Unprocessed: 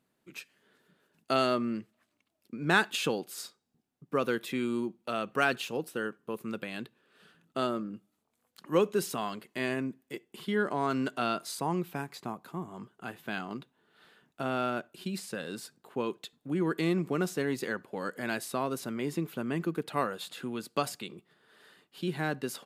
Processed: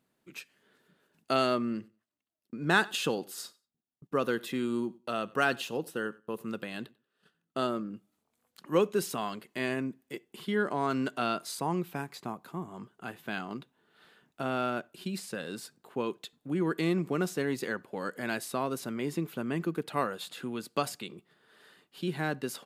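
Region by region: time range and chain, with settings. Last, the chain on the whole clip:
1.62–7.68 s: band-stop 2.3 kHz, Q 8.4 + gate -59 dBFS, range -15 dB + feedback delay 93 ms, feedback 17%, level -23 dB
whole clip: none

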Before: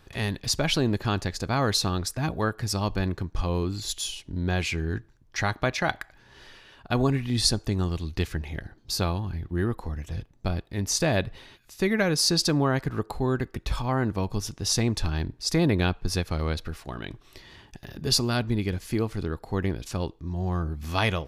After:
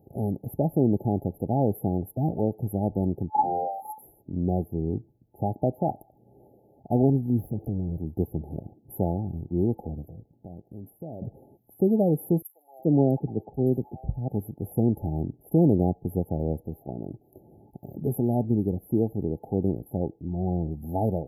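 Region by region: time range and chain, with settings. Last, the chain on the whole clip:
3.29–4.01 s: bass shelf 74 Hz +12 dB + crackle 160 per s -51 dBFS + ring modulator 880 Hz
7.39–7.99 s: compression 12:1, threshold -32 dBFS + tone controls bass +5 dB, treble -3 dB + waveshaping leveller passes 2
10.09–11.22 s: doubling 18 ms -14 dB + compression 3:1, threshold -42 dBFS
12.42–14.28 s: three bands offset in time highs, mids, lows 70/370 ms, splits 880/3000 Hz + three bands expanded up and down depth 100%
whole clip: FFT band-reject 870–11000 Hz; high-pass 140 Hz 12 dB/octave; bass shelf 380 Hz +6 dB

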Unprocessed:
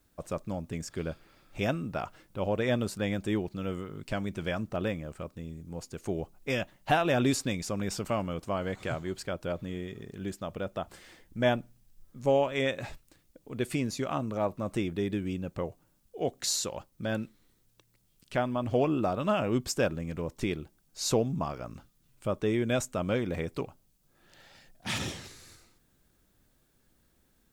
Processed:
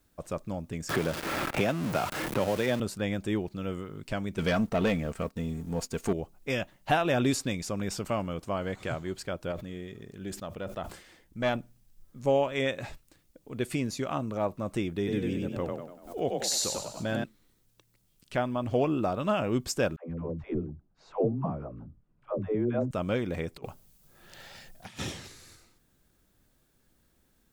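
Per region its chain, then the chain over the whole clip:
0.89–2.80 s: jump at every zero crossing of -32 dBFS + high-pass 140 Hz 6 dB/octave + three bands compressed up and down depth 100%
4.38–6.13 s: waveshaping leveller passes 2 + comb 4.4 ms, depth 41%
9.51–11.57 s: valve stage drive 17 dB, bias 0.55 + decay stretcher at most 97 dB/s
14.97–17.24 s: frequency-shifting echo 97 ms, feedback 46%, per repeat +33 Hz, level -3 dB + swell ahead of each attack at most 120 dB/s
19.96–22.91 s: low-pass 1 kHz + phase dispersion lows, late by 140 ms, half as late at 370 Hz
23.56–24.99 s: band-stop 290 Hz, Q 5.1 + compressor with a negative ratio -41 dBFS, ratio -0.5 + treble shelf 11 kHz +5 dB
whole clip: none

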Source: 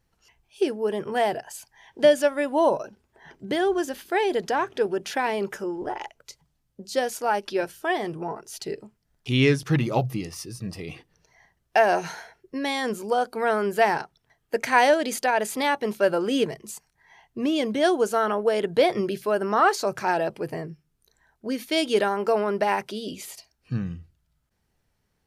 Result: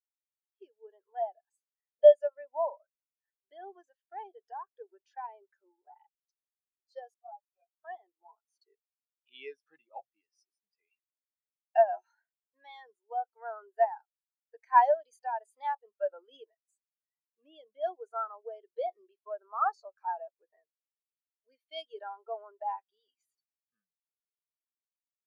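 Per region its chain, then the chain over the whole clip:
7.14–7.79 s: vowel filter a + doubling 12 ms -4 dB + tape noise reduction on one side only decoder only
whole clip: high-pass 890 Hz 12 dB/octave; dynamic bell 2 kHz, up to -5 dB, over -39 dBFS, Q 1.2; spectral contrast expander 2.5:1; trim +2.5 dB

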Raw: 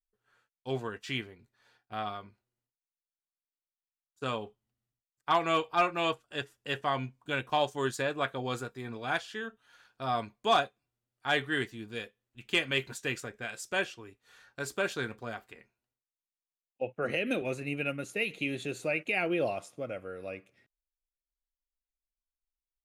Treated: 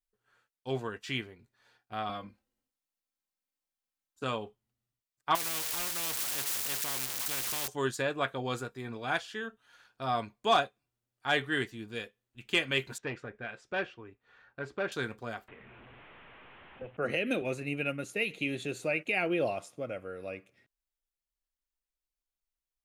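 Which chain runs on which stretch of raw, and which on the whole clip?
2.09–4.23 s: bass shelf 490 Hz +4 dB + comb 3.8 ms, depth 86%
5.35–7.68 s: zero-crossing glitches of -23.5 dBFS + spectrum-flattening compressor 4:1
12.98–14.92 s: low-pass 2.2 kHz + transformer saturation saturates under 880 Hz
15.48–16.97 s: one-bit delta coder 16 kbps, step -47 dBFS + distance through air 89 m + three bands compressed up and down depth 40%
whole clip: none

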